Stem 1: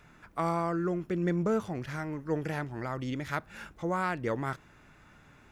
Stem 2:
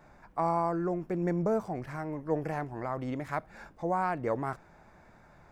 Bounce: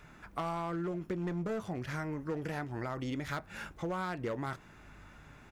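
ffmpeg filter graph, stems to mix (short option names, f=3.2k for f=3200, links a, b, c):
-filter_complex "[0:a]asoftclip=type=hard:threshold=-26dB,volume=1.5dB[a];[1:a]aeval=exprs='val(0)+0.00398*(sin(2*PI*50*n/s)+sin(2*PI*2*50*n/s)/2+sin(2*PI*3*50*n/s)/3+sin(2*PI*4*50*n/s)/4+sin(2*PI*5*50*n/s)/5)':c=same,asplit=2[b][c];[c]adelay=10.5,afreqshift=-1.1[d];[b][d]amix=inputs=2:normalize=1,adelay=11,volume=-8dB[e];[a][e]amix=inputs=2:normalize=0,acompressor=threshold=-33dB:ratio=6"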